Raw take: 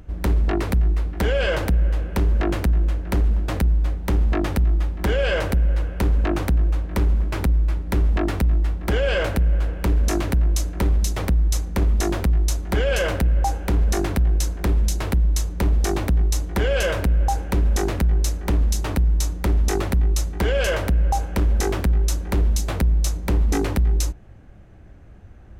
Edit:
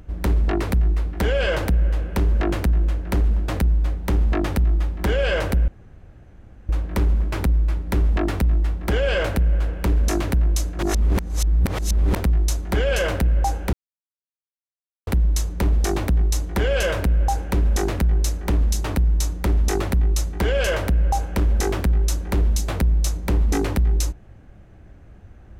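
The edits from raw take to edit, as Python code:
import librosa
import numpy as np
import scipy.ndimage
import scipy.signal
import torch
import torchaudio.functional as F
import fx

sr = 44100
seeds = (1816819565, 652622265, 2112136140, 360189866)

y = fx.edit(x, sr, fx.room_tone_fill(start_s=5.68, length_s=1.01),
    fx.reverse_span(start_s=10.79, length_s=1.37),
    fx.silence(start_s=13.73, length_s=1.34), tone=tone)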